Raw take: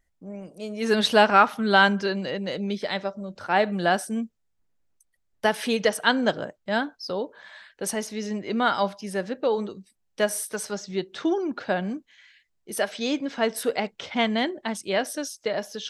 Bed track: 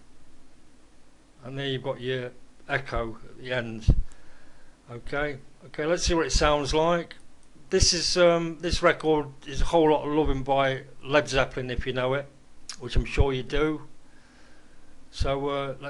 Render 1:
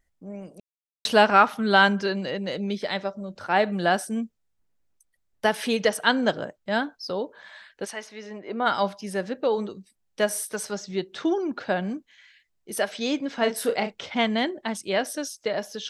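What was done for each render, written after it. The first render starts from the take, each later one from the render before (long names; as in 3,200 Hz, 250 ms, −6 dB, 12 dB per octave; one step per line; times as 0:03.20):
0:00.60–0:01.05: silence
0:07.84–0:08.65: resonant band-pass 2,300 Hz → 600 Hz, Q 0.73
0:13.36–0:14.03: double-tracking delay 34 ms −7 dB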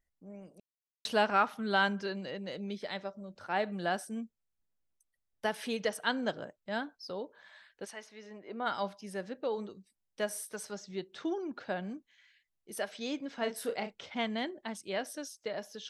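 level −10.5 dB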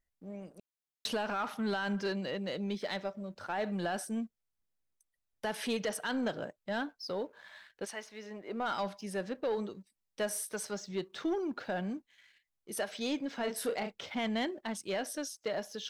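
brickwall limiter −25.5 dBFS, peak gain reduction 11.5 dB
leveller curve on the samples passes 1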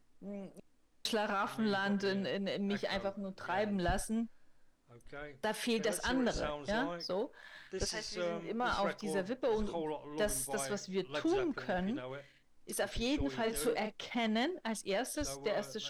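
mix in bed track −18.5 dB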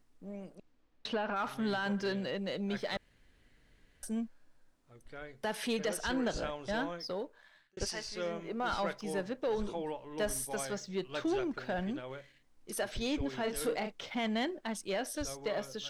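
0:00.55–0:01.35: low-pass filter 5,900 Hz → 2,500 Hz
0:02.97–0:04.03: fill with room tone
0:07.04–0:07.77: fade out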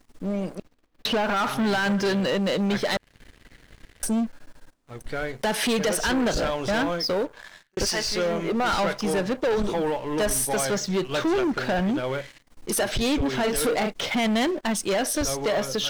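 in parallel at +2.5 dB: downward compressor 6 to 1, threshold −41 dBFS, peak gain reduction 11.5 dB
on the sum: leveller curve on the samples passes 3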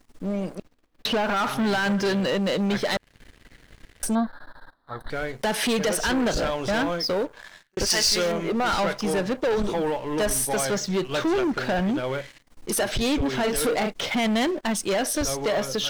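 0:04.15–0:05.10: drawn EQ curve 410 Hz 0 dB, 900 Hz +12 dB, 1,700 Hz +12 dB, 2,600 Hz −19 dB, 3,900 Hz +11 dB, 6,300 Hz −21 dB, 11,000 Hz −6 dB
0:07.90–0:08.32: high-shelf EQ 3,500 Hz +11 dB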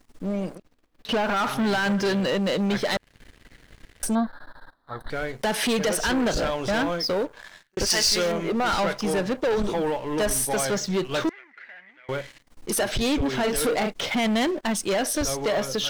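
0:00.57–0:01.09: downward compressor 4 to 1, threshold −44 dBFS
0:11.29–0:12.09: resonant band-pass 2,000 Hz, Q 12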